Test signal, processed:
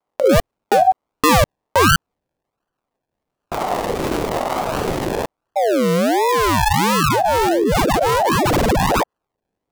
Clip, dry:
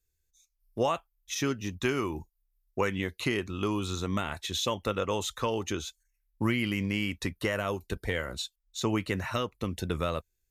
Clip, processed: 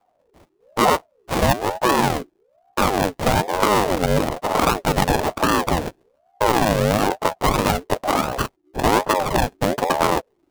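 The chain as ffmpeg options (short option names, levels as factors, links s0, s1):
-af "acrusher=samples=41:mix=1:aa=0.000001:lfo=1:lforange=24.6:lforate=1.4,alimiter=level_in=11.2:limit=0.891:release=50:level=0:latency=1,aeval=exprs='val(0)*sin(2*PI*540*n/s+540*0.4/1.1*sin(2*PI*1.1*n/s))':c=same,volume=0.562"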